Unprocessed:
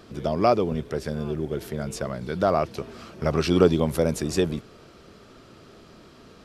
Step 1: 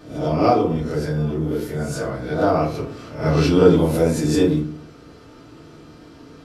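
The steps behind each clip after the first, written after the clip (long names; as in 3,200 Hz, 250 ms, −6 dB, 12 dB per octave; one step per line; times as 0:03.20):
peak hold with a rise ahead of every peak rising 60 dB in 0.44 s
feedback delay network reverb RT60 0.47 s, low-frequency decay 1.45×, high-frequency decay 0.55×, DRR −4.5 dB
level −4 dB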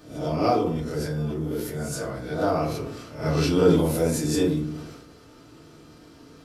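high-shelf EQ 6,000 Hz +10 dB
level that may fall only so fast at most 50 dB per second
level −6 dB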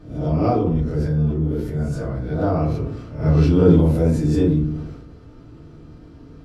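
RIAA equalisation playback
level −1 dB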